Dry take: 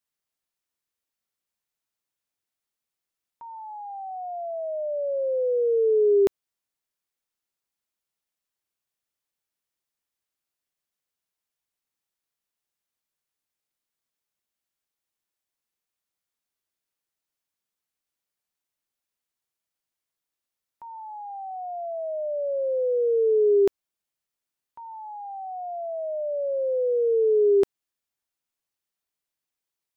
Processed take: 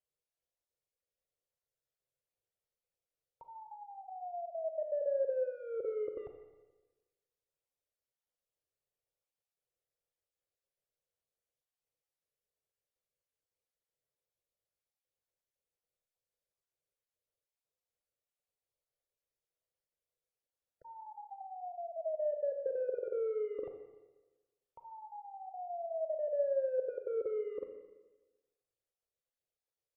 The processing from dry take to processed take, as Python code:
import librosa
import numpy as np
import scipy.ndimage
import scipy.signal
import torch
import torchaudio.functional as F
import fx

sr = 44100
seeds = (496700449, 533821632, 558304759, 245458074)

y = fx.spec_dropout(x, sr, seeds[0], share_pct=20)
y = 10.0 ** (-27.5 / 20.0) * (np.abs((y / 10.0 ** (-27.5 / 20.0) + 3.0) % 4.0 - 2.0) - 1.0)
y = fx.env_lowpass_down(y, sr, base_hz=540.0, full_db=-35.0)
y = fx.curve_eq(y, sr, hz=(140.0, 240.0, 500.0, 940.0), db=(0, -16, 6, -11))
y = fx.rev_schroeder(y, sr, rt60_s=1.2, comb_ms=29, drr_db=5.0)